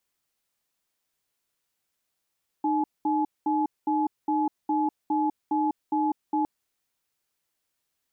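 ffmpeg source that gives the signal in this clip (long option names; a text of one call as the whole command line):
ffmpeg -f lavfi -i "aevalsrc='0.0596*(sin(2*PI*306*t)+sin(2*PI*851*t))*clip(min(mod(t,0.41),0.2-mod(t,0.41))/0.005,0,1)':duration=3.81:sample_rate=44100" out.wav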